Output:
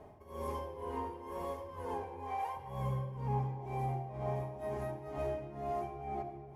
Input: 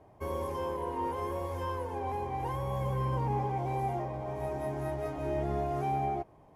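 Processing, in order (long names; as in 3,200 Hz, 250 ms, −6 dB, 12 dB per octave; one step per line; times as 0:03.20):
0:02.02–0:02.57: high-pass filter 540 Hz 24 dB per octave
downward compressor 6 to 1, threshold −39 dBFS, peak gain reduction 11.5 dB
amplitude tremolo 2.1 Hz, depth 92%
rectangular room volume 2,600 cubic metres, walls mixed, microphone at 1.4 metres
level +4 dB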